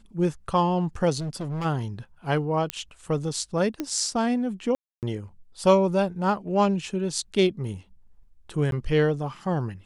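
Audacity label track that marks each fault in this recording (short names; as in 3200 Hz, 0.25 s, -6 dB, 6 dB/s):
1.190000	1.660000	clipped -27.5 dBFS
2.700000	2.700000	pop -10 dBFS
3.800000	3.800000	pop -15 dBFS
4.750000	5.030000	gap 0.278 s
8.710000	8.720000	gap 12 ms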